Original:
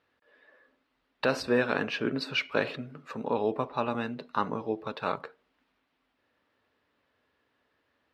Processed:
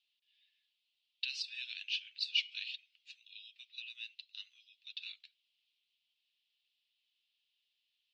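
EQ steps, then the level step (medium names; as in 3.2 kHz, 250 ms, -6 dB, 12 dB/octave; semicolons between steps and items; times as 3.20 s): steep high-pass 2.9 kHz 48 dB/octave; distance through air 160 m; tilt EQ -2 dB/octave; +10.5 dB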